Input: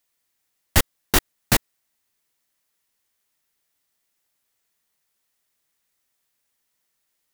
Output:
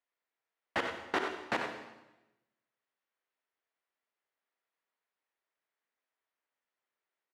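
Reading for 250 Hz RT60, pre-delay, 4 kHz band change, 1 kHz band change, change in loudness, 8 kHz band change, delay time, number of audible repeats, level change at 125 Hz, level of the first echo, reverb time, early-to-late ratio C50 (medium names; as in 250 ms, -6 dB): 1.1 s, 39 ms, -16.5 dB, -6.0 dB, -13.5 dB, -29.5 dB, 94 ms, 1, -26.5 dB, -8.0 dB, 1.0 s, 3.5 dB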